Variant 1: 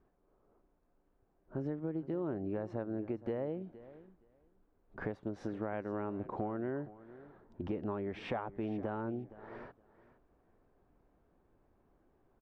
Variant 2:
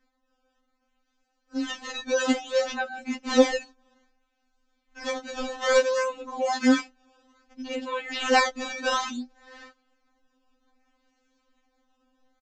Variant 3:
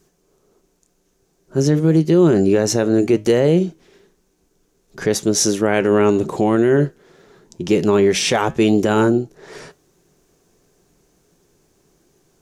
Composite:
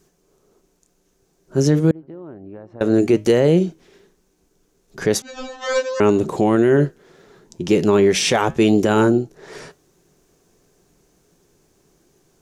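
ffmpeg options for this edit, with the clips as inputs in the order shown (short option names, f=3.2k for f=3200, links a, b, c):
-filter_complex "[2:a]asplit=3[a][b][c];[a]atrim=end=1.912[d];[0:a]atrim=start=1.908:end=2.812[e];[b]atrim=start=2.808:end=5.222[f];[1:a]atrim=start=5.218:end=6.002[g];[c]atrim=start=5.998[h];[d][e]acrossfade=d=0.004:c1=hsin:c2=hsin[i];[i][f]acrossfade=d=0.004:c1=hsin:c2=hsin[j];[j][g]acrossfade=d=0.004:c1=hsin:c2=hsin[k];[k][h]acrossfade=d=0.004:c1=hsin:c2=hsin"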